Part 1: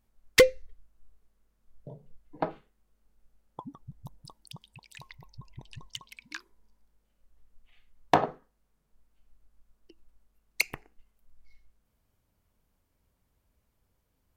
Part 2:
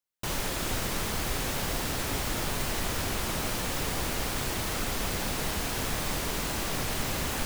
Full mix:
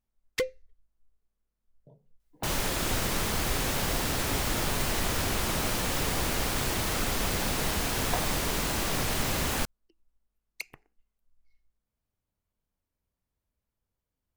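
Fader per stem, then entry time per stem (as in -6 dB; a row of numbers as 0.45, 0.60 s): -11.5, +2.0 dB; 0.00, 2.20 s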